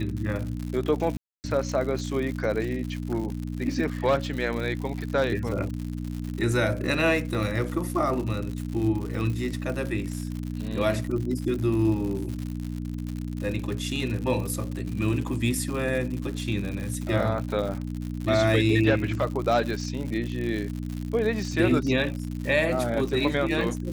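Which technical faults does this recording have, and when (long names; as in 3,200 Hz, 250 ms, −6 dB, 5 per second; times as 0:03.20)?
surface crackle 110 per second −31 dBFS
mains hum 60 Hz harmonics 5 −32 dBFS
0:01.17–0:01.44: drop-out 269 ms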